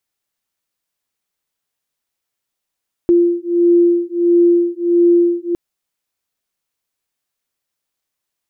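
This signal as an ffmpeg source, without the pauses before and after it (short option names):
-f lavfi -i "aevalsrc='0.224*(sin(2*PI*345*t)+sin(2*PI*346.5*t))':d=2.46:s=44100"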